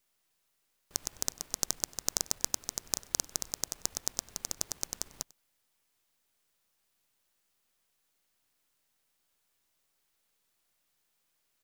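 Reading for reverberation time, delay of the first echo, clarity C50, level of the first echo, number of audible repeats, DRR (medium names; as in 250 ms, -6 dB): no reverb, 96 ms, no reverb, -24.0 dB, 1, no reverb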